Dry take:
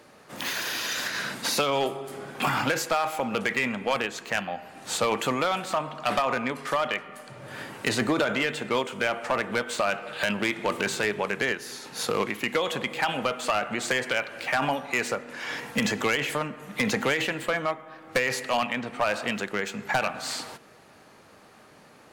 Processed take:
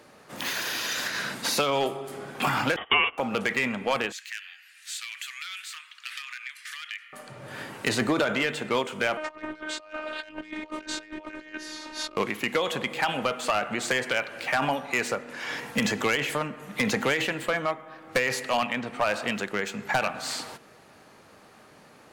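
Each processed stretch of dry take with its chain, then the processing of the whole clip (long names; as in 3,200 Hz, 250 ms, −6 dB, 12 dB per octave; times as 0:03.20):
0:02.76–0:03.18: noise gate −30 dBFS, range −19 dB + voice inversion scrambler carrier 3,500 Hz + hollow resonant body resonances 460/700/1,100 Hz, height 17 dB, ringing for 25 ms
0:04.12–0:07.13: Butterworth high-pass 1,700 Hz + downward compressor 2 to 1, threshold −35 dBFS
0:09.17–0:12.17: high-frequency loss of the air 81 metres + compressor whose output falls as the input rises −34 dBFS, ratio −0.5 + phases set to zero 308 Hz
whole clip: no processing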